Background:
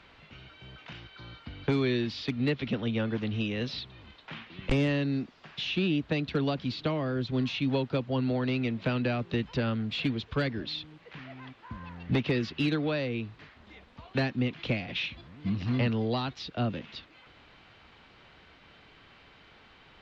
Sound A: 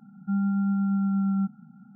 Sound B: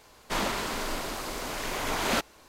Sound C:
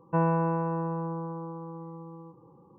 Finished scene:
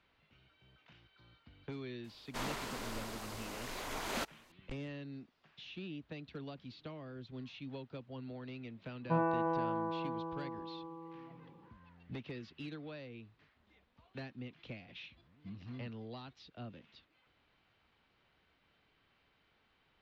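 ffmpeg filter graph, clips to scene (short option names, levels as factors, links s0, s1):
-filter_complex "[0:a]volume=0.133[s0];[3:a]aecho=1:1:76|347|463:0.668|0.211|0.126[s1];[2:a]atrim=end=2.48,asetpts=PTS-STARTPTS,volume=0.282,afade=t=in:d=0.004:c=hsin,afade=t=out:st=2.476:d=0.004:c=hsin,adelay=2040[s2];[s1]atrim=end=2.78,asetpts=PTS-STARTPTS,volume=0.501,afade=t=in:d=0.1,afade=t=out:st=2.68:d=0.1,adelay=8970[s3];[s0][s2][s3]amix=inputs=3:normalize=0"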